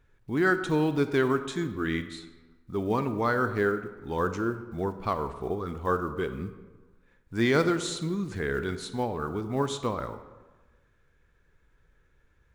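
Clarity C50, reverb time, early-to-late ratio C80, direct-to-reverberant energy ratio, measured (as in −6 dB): 11.0 dB, 1.3 s, 12.5 dB, 10.0 dB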